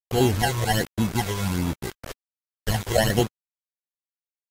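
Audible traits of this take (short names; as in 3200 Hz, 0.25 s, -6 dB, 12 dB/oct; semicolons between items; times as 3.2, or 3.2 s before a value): aliases and images of a low sample rate 1200 Hz, jitter 0%; phasing stages 12, 1.3 Hz, lowest notch 240–1900 Hz; a quantiser's noise floor 6-bit, dither none; Vorbis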